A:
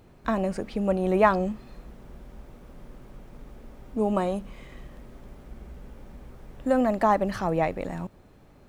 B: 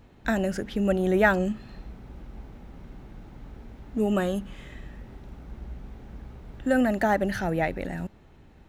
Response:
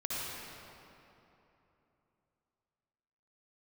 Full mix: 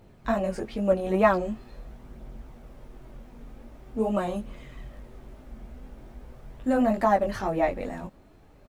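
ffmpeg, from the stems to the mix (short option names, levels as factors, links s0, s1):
-filter_complex "[0:a]flanger=delay=19.5:depth=4:speed=2.4,volume=1.12[s0];[1:a]equalizer=f=650:w=7.5:g=14,adelay=8.1,volume=0.282[s1];[s0][s1]amix=inputs=2:normalize=0,aphaser=in_gain=1:out_gain=1:delay=4.4:decay=0.26:speed=0.44:type=triangular"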